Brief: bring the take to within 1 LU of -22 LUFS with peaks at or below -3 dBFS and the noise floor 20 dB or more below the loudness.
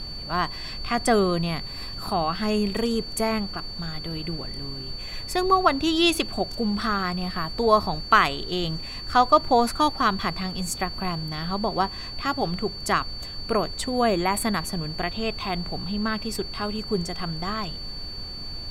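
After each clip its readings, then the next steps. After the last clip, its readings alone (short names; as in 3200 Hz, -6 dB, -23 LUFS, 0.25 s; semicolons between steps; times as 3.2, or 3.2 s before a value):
steady tone 4500 Hz; tone level -35 dBFS; noise floor -36 dBFS; noise floor target -46 dBFS; loudness -25.5 LUFS; peak -4.0 dBFS; loudness target -22.0 LUFS
-> notch 4500 Hz, Q 30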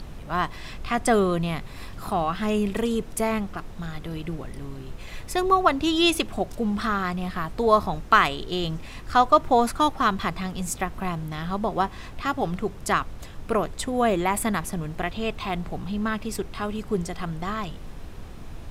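steady tone none; noise floor -40 dBFS; noise floor target -46 dBFS
-> noise print and reduce 6 dB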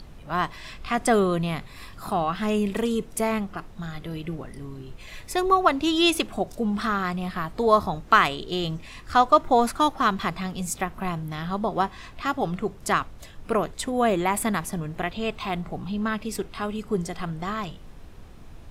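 noise floor -44 dBFS; noise floor target -46 dBFS
-> noise print and reduce 6 dB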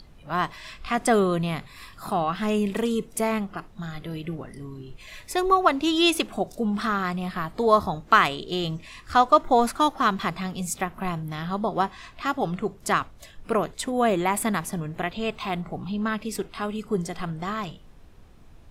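noise floor -49 dBFS; loudness -25.5 LUFS; peak -4.5 dBFS; loudness target -22.0 LUFS
-> gain +3.5 dB; limiter -3 dBFS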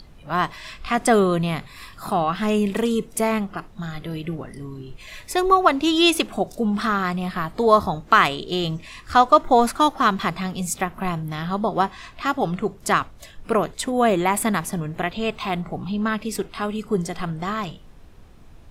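loudness -22.0 LUFS; peak -3.0 dBFS; noise floor -45 dBFS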